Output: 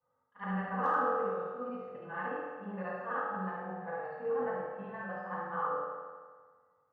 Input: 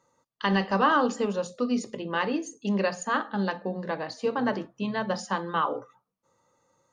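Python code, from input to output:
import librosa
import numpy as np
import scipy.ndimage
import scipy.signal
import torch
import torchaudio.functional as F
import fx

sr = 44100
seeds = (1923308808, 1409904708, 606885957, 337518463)

y = fx.frame_reverse(x, sr, frame_ms=147.0)
y = scipy.signal.sosfilt(scipy.signal.butter(4, 1700.0, 'lowpass', fs=sr, output='sos'), y)
y = fx.peak_eq(y, sr, hz=330.0, db=-11.0, octaves=1.7)
y = np.clip(y, -10.0 ** (-19.0 / 20.0), 10.0 ** (-19.0 / 20.0))
y = fx.rev_fdn(y, sr, rt60_s=1.6, lf_ratio=0.9, hf_ratio=0.8, size_ms=12.0, drr_db=-6.0)
y = y * librosa.db_to_amplitude(-8.0)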